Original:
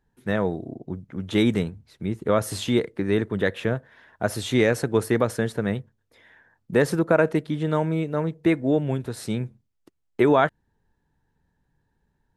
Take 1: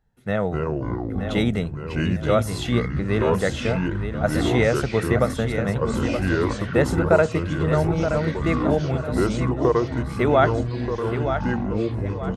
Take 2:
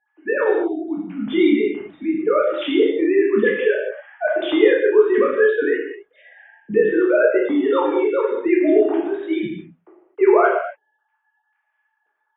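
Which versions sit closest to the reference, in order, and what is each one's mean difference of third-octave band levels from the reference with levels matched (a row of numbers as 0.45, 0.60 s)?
1, 2; 8.5, 13.0 dB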